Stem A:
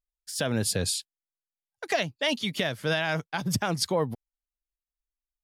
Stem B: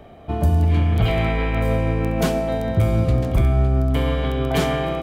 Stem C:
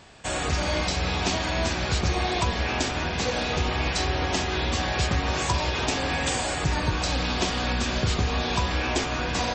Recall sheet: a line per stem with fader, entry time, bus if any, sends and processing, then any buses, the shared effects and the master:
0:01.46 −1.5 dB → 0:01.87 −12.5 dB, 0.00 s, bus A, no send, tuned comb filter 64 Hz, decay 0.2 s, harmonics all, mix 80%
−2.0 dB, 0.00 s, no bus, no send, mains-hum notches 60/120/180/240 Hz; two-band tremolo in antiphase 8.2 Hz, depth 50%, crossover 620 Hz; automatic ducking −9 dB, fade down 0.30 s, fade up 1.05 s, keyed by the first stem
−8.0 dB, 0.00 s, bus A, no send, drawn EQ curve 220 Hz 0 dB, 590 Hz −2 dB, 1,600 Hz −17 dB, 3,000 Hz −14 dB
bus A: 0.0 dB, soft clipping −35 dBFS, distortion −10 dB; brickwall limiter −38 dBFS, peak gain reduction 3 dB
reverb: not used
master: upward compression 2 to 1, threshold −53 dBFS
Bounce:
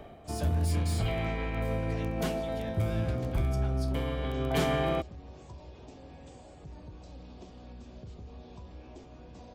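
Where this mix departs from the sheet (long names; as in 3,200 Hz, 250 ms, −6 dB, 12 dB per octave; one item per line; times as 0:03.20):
stem B: missing two-band tremolo in antiphase 8.2 Hz, depth 50%, crossover 620 Hz
stem C −8.0 dB → −18.5 dB
master: missing upward compression 2 to 1, threshold −53 dBFS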